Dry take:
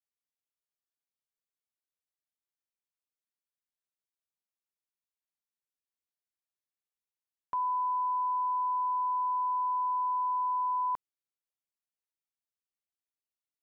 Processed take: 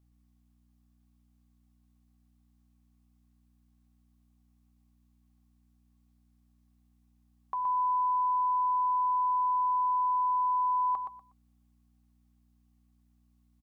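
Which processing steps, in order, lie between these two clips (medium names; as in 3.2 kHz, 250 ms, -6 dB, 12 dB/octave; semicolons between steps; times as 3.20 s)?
peak limiter -38 dBFS, peak gain reduction 11 dB; small resonant body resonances 780/1100 Hz, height 15 dB, ringing for 60 ms; hum 60 Hz, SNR 29 dB; on a send: feedback delay 121 ms, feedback 22%, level -6 dB; on the sum: trim +7.5 dB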